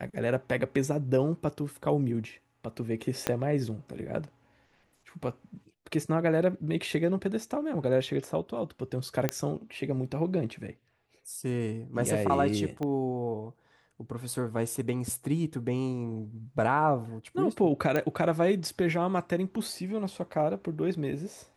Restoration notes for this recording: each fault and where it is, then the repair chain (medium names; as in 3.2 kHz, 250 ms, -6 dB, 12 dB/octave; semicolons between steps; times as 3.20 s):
3.27 s: pop -11 dBFS
9.29 s: pop -11 dBFS
12.83 s: pop -22 dBFS
17.96 s: pop -15 dBFS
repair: de-click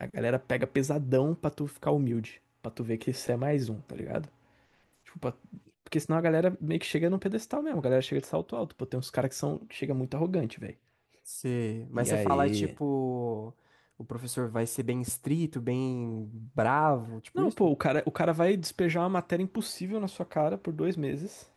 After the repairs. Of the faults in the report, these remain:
3.27 s: pop
12.83 s: pop